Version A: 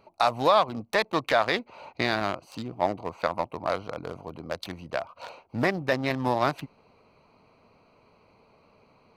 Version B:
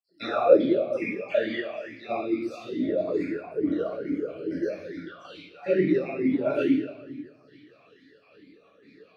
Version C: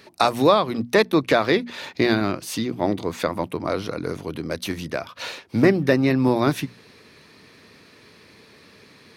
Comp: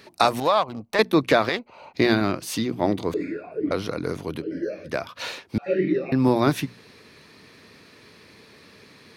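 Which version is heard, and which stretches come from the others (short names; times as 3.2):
C
0.4–0.99 from A
1.49–1.94 from A
3.14–3.71 from B
4.42–4.87 from B, crossfade 0.06 s
5.58–6.12 from B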